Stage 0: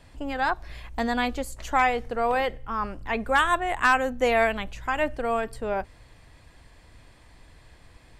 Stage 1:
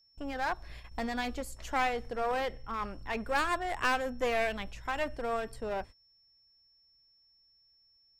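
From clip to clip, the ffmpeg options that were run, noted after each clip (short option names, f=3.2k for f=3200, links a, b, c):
-af "aeval=exprs='clip(val(0),-1,0.0531)':c=same,agate=range=-28dB:threshold=-39dB:ratio=16:detection=peak,aeval=exprs='val(0)+0.00126*sin(2*PI*5400*n/s)':c=same,volume=-6dB"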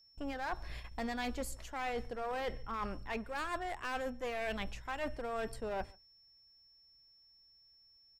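-filter_complex "[0:a]areverse,acompressor=threshold=-37dB:ratio=6,areverse,asplit=2[a][b];[b]adelay=139.9,volume=-26dB,highshelf=f=4k:g=-3.15[c];[a][c]amix=inputs=2:normalize=0,volume=2dB"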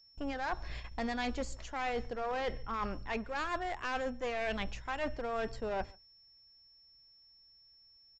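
-af "aresample=16000,aresample=44100,volume=2.5dB"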